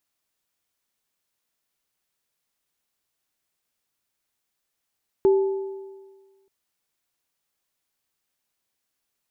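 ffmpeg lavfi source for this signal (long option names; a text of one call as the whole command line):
ffmpeg -f lavfi -i "aevalsrc='0.237*pow(10,-3*t/1.47)*sin(2*PI*389*t)+0.0335*pow(10,-3*t/1.45)*sin(2*PI*863*t)':duration=1.23:sample_rate=44100" out.wav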